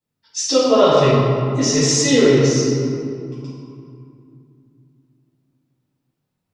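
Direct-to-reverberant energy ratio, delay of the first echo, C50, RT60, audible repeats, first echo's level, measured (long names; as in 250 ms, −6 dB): −11.5 dB, no echo audible, −2.5 dB, 2.4 s, no echo audible, no echo audible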